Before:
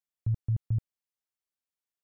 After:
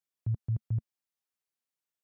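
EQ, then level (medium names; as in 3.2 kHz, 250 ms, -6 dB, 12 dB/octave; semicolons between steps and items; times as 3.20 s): high-pass 100 Hz; dynamic bell 220 Hz, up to -4 dB, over -59 dBFS, Q 6.2; 0.0 dB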